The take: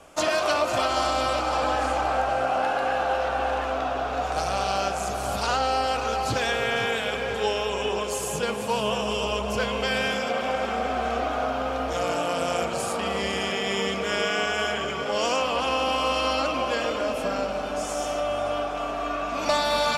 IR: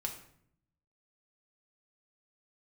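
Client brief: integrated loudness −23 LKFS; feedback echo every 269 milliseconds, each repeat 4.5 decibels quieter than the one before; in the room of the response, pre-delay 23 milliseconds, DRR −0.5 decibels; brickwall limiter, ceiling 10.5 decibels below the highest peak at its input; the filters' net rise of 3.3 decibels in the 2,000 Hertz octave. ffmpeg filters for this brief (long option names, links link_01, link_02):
-filter_complex "[0:a]equalizer=frequency=2000:width_type=o:gain=4.5,alimiter=limit=-20.5dB:level=0:latency=1,aecho=1:1:269|538|807|1076|1345|1614|1883|2152|2421:0.596|0.357|0.214|0.129|0.0772|0.0463|0.0278|0.0167|0.01,asplit=2[link_01][link_02];[1:a]atrim=start_sample=2205,adelay=23[link_03];[link_02][link_03]afir=irnorm=-1:irlink=0,volume=0dB[link_04];[link_01][link_04]amix=inputs=2:normalize=0,volume=1dB"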